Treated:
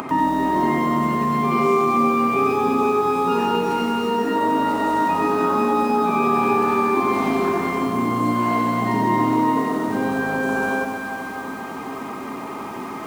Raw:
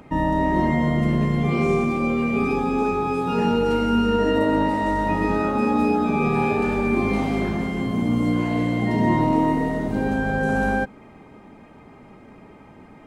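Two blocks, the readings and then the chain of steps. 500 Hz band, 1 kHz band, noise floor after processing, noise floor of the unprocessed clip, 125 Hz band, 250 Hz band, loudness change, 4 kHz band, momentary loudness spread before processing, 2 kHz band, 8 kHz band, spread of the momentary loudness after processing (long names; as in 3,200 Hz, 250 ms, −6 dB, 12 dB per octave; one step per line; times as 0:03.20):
+1.5 dB, +6.0 dB, −31 dBFS, −47 dBFS, −6.0 dB, −0.5 dB, +1.5 dB, +2.0 dB, 4 LU, +1.5 dB, can't be measured, 12 LU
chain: spectral tilt +1.5 dB per octave
delay that swaps between a low-pass and a high-pass 126 ms, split 1,300 Hz, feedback 73%, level −8 dB
upward compression, threshold −28 dBFS
high-pass filter 110 Hz 12 dB per octave
notch filter 620 Hz, Q 12
downward compressor 2 to 1, threshold −26 dBFS, peak gain reduction 5 dB
parametric band 1,100 Hz +12.5 dB 0.62 octaves
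hollow resonant body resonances 270/380/650 Hz, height 8 dB, ringing for 55 ms
feedback echo at a low word length 93 ms, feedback 55%, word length 7 bits, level −6 dB
level +1.5 dB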